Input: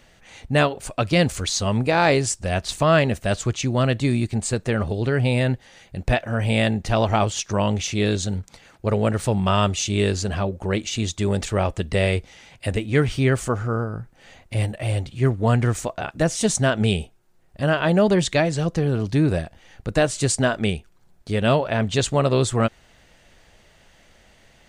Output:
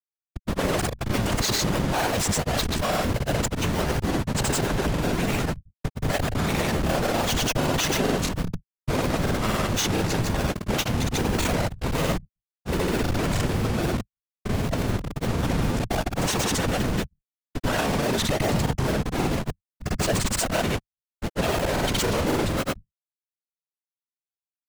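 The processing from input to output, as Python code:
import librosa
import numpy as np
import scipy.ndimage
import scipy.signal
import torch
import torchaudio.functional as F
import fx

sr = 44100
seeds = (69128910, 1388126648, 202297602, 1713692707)

y = fx.schmitt(x, sr, flips_db=-29.0)
y = fx.whisperise(y, sr, seeds[0])
y = fx.granulator(y, sr, seeds[1], grain_ms=100.0, per_s=20.0, spray_ms=100.0, spread_st=0)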